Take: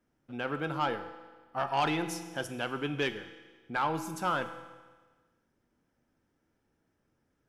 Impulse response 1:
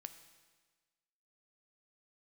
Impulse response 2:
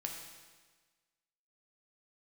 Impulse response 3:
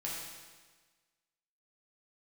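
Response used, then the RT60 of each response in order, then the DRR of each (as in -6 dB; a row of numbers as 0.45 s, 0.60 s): 1; 1.4 s, 1.4 s, 1.4 s; 9.0 dB, 1.0 dB, -5.5 dB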